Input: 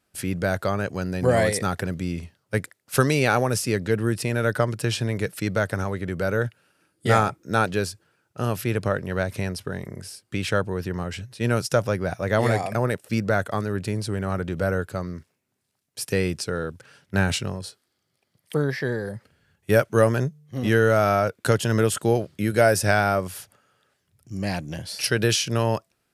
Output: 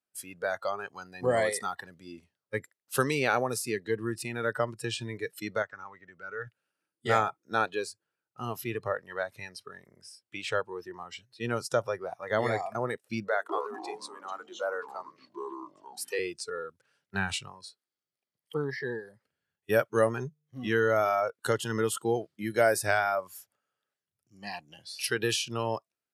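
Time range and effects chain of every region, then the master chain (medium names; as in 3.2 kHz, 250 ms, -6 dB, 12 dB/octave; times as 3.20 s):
5.62–6.47 s: rippled Chebyshev low-pass 7.9 kHz, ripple 6 dB + treble shelf 5.9 kHz -8 dB
13.28–16.19 s: high-pass 350 Hz 24 dB/octave + hum notches 50/100/150/200/250/300/350/400/450 Hz + ever faster or slower copies 206 ms, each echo -6 st, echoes 3, each echo -6 dB
whole clip: high-pass 290 Hz 6 dB/octave; spectral noise reduction 15 dB; dynamic bell 5.6 kHz, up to -5 dB, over -45 dBFS, Q 2.1; trim -4.5 dB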